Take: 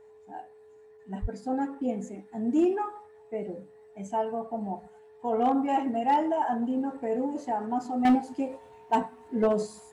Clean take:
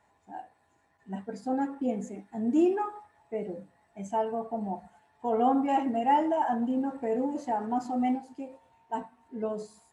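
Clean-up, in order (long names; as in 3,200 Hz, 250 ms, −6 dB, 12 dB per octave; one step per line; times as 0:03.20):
clipped peaks rebuilt −16.5 dBFS
notch filter 430 Hz, Q 30
high-pass at the plosives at 0:01.21
level 0 dB, from 0:08.05 −9 dB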